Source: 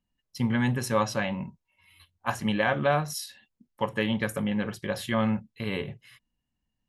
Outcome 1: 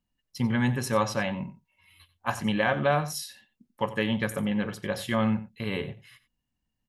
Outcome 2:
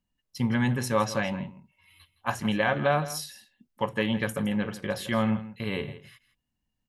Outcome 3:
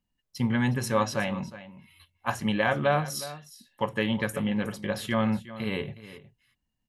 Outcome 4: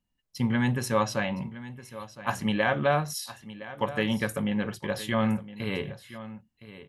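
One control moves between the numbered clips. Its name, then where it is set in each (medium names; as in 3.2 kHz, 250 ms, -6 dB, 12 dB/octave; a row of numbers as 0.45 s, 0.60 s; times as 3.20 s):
delay, time: 91 ms, 164 ms, 364 ms, 1014 ms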